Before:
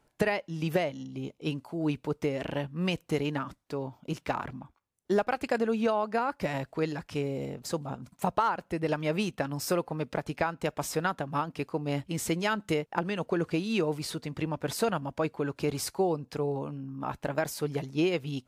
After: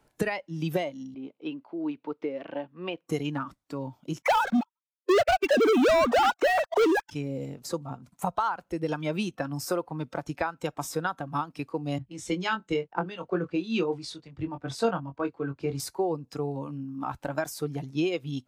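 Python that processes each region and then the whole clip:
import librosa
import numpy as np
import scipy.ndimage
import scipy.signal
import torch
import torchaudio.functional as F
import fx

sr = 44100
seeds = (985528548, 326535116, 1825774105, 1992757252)

y = fx.chain(x, sr, fx.highpass(hz=290.0, slope=12),
    fx.air_absorb(metres=320.0), at=(1.14, 3.09))
y = fx.chain(y, sr, fx.sine_speech(),
    fx.leveller(passes=5), at=(4.22, 7.11))
y = fx.chain(y, sr, fx.air_absorb(metres=78.0),
    fx.doubler(ms=22.0, db=-7.0),
    fx.band_widen(depth_pct=100), at=(11.98, 15.8))
y = fx.noise_reduce_blind(y, sr, reduce_db=9)
y = fx.band_squash(y, sr, depth_pct=40)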